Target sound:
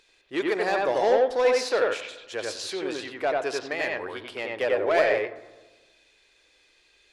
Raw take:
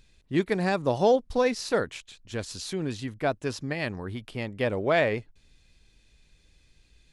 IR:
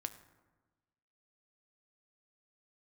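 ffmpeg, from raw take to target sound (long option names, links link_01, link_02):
-filter_complex "[0:a]asplit=2[link_01][link_02];[link_02]highpass=frequency=720:poles=1,volume=16dB,asoftclip=type=tanh:threshold=-11dB[link_03];[link_01][link_03]amix=inputs=2:normalize=0,lowpass=frequency=5300:poles=1,volume=-6dB,lowshelf=frequency=270:width_type=q:width=1.5:gain=-11.5,asplit=2[link_04][link_05];[1:a]atrim=start_sample=2205,lowpass=3300,adelay=90[link_06];[link_05][link_06]afir=irnorm=-1:irlink=0,volume=1.5dB[link_07];[link_04][link_07]amix=inputs=2:normalize=0,volume=-5.5dB"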